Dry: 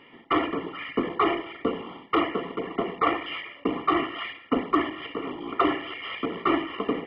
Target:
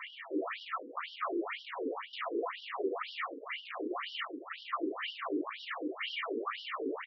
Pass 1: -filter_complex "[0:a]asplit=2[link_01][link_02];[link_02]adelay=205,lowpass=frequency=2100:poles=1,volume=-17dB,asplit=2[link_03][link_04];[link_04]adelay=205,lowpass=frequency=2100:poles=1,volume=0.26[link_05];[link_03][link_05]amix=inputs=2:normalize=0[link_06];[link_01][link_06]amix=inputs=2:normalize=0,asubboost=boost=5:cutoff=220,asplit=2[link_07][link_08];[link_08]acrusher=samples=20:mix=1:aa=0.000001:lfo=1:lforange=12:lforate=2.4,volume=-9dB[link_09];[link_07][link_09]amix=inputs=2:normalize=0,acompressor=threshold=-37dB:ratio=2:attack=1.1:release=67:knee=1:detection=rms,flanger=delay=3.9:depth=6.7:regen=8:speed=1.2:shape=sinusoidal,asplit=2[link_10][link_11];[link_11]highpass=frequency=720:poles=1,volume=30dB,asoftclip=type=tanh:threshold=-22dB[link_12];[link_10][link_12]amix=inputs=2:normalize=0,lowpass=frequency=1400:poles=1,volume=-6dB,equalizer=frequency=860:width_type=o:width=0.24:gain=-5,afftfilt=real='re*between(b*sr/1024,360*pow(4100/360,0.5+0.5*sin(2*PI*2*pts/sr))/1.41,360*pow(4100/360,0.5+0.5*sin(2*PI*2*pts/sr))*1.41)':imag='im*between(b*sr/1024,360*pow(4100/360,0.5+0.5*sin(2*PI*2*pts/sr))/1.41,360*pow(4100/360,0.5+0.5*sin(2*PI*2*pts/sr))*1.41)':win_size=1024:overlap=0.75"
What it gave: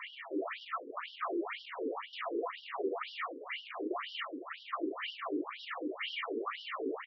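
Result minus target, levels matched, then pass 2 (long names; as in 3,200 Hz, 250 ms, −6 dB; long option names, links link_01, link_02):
downward compressor: peak gain reduction +5.5 dB; sample-and-hold swept by an LFO: distortion −7 dB
-filter_complex "[0:a]asplit=2[link_01][link_02];[link_02]adelay=205,lowpass=frequency=2100:poles=1,volume=-17dB,asplit=2[link_03][link_04];[link_04]adelay=205,lowpass=frequency=2100:poles=1,volume=0.26[link_05];[link_03][link_05]amix=inputs=2:normalize=0[link_06];[link_01][link_06]amix=inputs=2:normalize=0,asubboost=boost=5:cutoff=220,asplit=2[link_07][link_08];[link_08]acrusher=samples=46:mix=1:aa=0.000001:lfo=1:lforange=27.6:lforate=2.4,volume=-9dB[link_09];[link_07][link_09]amix=inputs=2:normalize=0,acompressor=threshold=-26.5dB:ratio=2:attack=1.1:release=67:knee=1:detection=rms,flanger=delay=3.9:depth=6.7:regen=8:speed=1.2:shape=sinusoidal,asplit=2[link_10][link_11];[link_11]highpass=frequency=720:poles=1,volume=30dB,asoftclip=type=tanh:threshold=-22dB[link_12];[link_10][link_12]amix=inputs=2:normalize=0,lowpass=frequency=1400:poles=1,volume=-6dB,equalizer=frequency=860:width_type=o:width=0.24:gain=-5,afftfilt=real='re*between(b*sr/1024,360*pow(4100/360,0.5+0.5*sin(2*PI*2*pts/sr))/1.41,360*pow(4100/360,0.5+0.5*sin(2*PI*2*pts/sr))*1.41)':imag='im*between(b*sr/1024,360*pow(4100/360,0.5+0.5*sin(2*PI*2*pts/sr))/1.41,360*pow(4100/360,0.5+0.5*sin(2*PI*2*pts/sr))*1.41)':win_size=1024:overlap=0.75"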